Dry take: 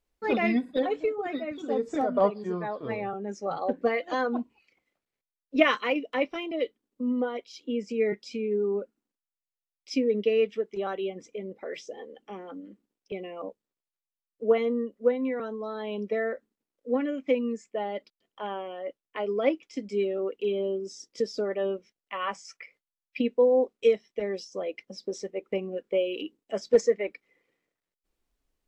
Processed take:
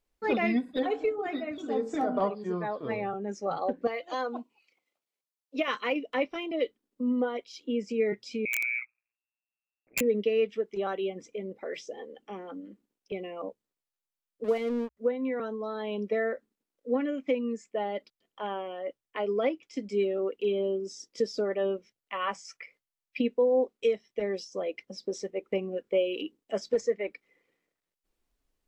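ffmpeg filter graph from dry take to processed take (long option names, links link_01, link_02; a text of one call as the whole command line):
ffmpeg -i in.wav -filter_complex "[0:a]asettb=1/sr,asplit=3[link_01][link_02][link_03];[link_01]atrim=end=0.724[link_04];[link_02]atrim=start=0.72:end=2.35,asetpts=PTS-STARTPTS,afade=type=in:duration=0.004:curve=qsin,afade=type=out:start_time=1.626:duration=0.004:curve=qsin,bandreject=frequency=550:width=6.6,bandreject=frequency=45.02:width_type=h:width=4,bandreject=frequency=90.04:width_type=h:width=4,bandreject=frequency=135.06:width_type=h:width=4,bandreject=frequency=180.08:width_type=h:width=4,bandreject=frequency=225.1:width_type=h:width=4,bandreject=frequency=270.12:width_type=h:width=4,bandreject=frequency=315.14:width_type=h:width=4,bandreject=frequency=360.16:width_type=h:width=4,bandreject=frequency=405.18:width_type=h:width=4,bandreject=frequency=450.2:width_type=h:width=4,bandreject=frequency=495.22:width_type=h:width=4,bandreject=frequency=540.24:width_type=h:width=4,bandreject=frequency=585.26:width_type=h:width=4,bandreject=frequency=630.28:width_type=h:width=4,bandreject=frequency=675.3:width_type=h:width=4,bandreject=frequency=720.32:width_type=h:width=4,bandreject=frequency=765.34:width_type=h:width=4,bandreject=frequency=810.36:width_type=h:width=4,bandreject=frequency=855.38:width_type=h:width=4,bandreject=frequency=900.4:width_type=h:width=4,bandreject=frequency=945.42:width_type=h:width=4,bandreject=frequency=990.44:width_type=h:width=4,bandreject=frequency=1035.46:width_type=h:width=4,bandreject=frequency=1080.48:width_type=h:width=4,bandreject=frequency=1125.5:width_type=h:width=4,bandreject=frequency=1170.52:width_type=h:width=4,bandreject=frequency=1215.54:width_type=h:width=4,bandreject=frequency=1260.56:width_type=h:width=4,bandreject=frequency=1305.58:width_type=h:width=4,bandreject=frequency=1350.6:width_type=h:width=4,bandreject=frequency=1395.62:width_type=h:width=4,bandreject=frequency=1440.64:width_type=h:width=4,bandreject=frequency=1485.66:width_type=h:width=4,bandreject=frequency=1530.68:width_type=h:width=4,bandreject=frequency=1575.7:width_type=h:width=4,bandreject=frequency=1620.72:width_type=h:width=4,bandreject=frequency=1665.74:width_type=h:width=4,bandreject=frequency=1710.76:width_type=h:width=4[link_05];[link_03]atrim=start=2.346[link_06];[link_04][link_05]acrossfade=duration=0.004:curve1=hsin:curve2=qsin[link_07];[link_07][link_06]acrossfade=duration=0.004:curve1=qsin:curve2=hsin,asettb=1/sr,asplit=3[link_08][link_09][link_10];[link_08]atrim=end=3.874[link_11];[link_09]atrim=start=3.87:end=5.68,asetpts=PTS-STARTPTS,afade=type=in:duration=0.004:curve=qsin,afade=type=out:start_time=1.806:duration=0.004:curve=qsin,highpass=frequency=650:poles=1,equalizer=frequency=1700:width=2.2:gain=-7.5[link_12];[link_10]atrim=start=5.676[link_13];[link_11][link_12]acrossfade=duration=0.004:curve1=hsin:curve2=qsin[link_14];[link_14][link_13]acrossfade=duration=0.004:curve1=qsin:curve2=hsin,asettb=1/sr,asplit=3[link_15][link_16][link_17];[link_15]atrim=end=8.454[link_18];[link_16]atrim=start=8.45:end=10.01,asetpts=PTS-STARTPTS,afade=type=in:duration=0.004:curve=qsin,afade=type=out:start_time=1.556:duration=0.004:curve=qsin,lowpass=frequency=2300:width_type=q:width=0.5098,lowpass=frequency=2300:width_type=q:width=0.6013,lowpass=frequency=2300:width_type=q:width=0.9,lowpass=frequency=2300:width_type=q:width=2.563,afreqshift=-2700,tremolo=f=120:d=0.919,aeval=exprs='(mod(11.2*val(0)+1,2)-1)/11.2':channel_layout=same[link_19];[link_17]atrim=start=10.006[link_20];[link_18][link_19]acrossfade=duration=0.004:curve1=hsin:curve2=qsin[link_21];[link_21][link_20]acrossfade=duration=0.004:curve1=qsin:curve2=hsin,asettb=1/sr,asplit=3[link_22][link_23][link_24];[link_22]atrim=end=14.444[link_25];[link_23]atrim=start=14.44:end=14.97,asetpts=PTS-STARTPTS,afade=type=in:duration=0.004:curve=qsin,afade=type=out:start_time=0.526:duration=0.004:curve=qsin,highpass=frequency=97:poles=1,equalizer=frequency=250:width_type=o:width=0.24:gain=2.5,aeval=exprs='sgn(val(0))*max(abs(val(0))-0.00891,0)':channel_layout=same[link_26];[link_24]atrim=start=14.966[link_27];[link_25][link_26]acrossfade=duration=0.004:curve1=hsin:curve2=qsin[link_28];[link_28][link_27]acrossfade=duration=0.004:curve1=qsin:curve2=hsin,bandreject=frequency=60:width_type=h:width=6,bandreject=frequency=120:width_type=h:width=6,alimiter=limit=-17dB:level=0:latency=1:release=334" out.wav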